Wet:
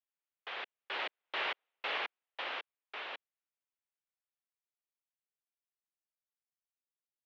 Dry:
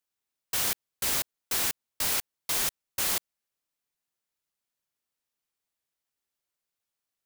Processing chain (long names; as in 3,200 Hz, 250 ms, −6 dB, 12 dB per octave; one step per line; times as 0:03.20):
source passing by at 0:01.50, 42 m/s, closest 8.2 metres
wrap-around overflow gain 31.5 dB
single-sideband voice off tune −73 Hz 510–3,300 Hz
level +10 dB